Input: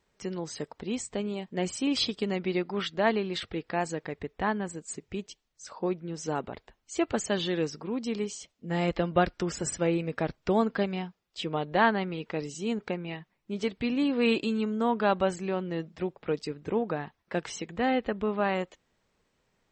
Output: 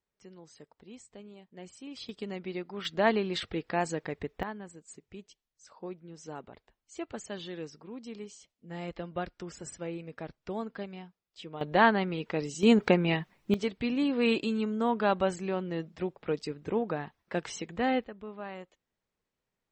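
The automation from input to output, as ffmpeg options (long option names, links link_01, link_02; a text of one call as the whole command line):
ffmpeg -i in.wav -af "asetnsamples=nb_out_samples=441:pad=0,asendcmd='2.09 volume volume -8dB;2.85 volume volume 0dB;4.43 volume volume -11dB;11.61 volume volume 1dB;12.63 volume volume 9.5dB;13.54 volume volume -1.5dB;18.04 volume volume -13.5dB',volume=-16.5dB" out.wav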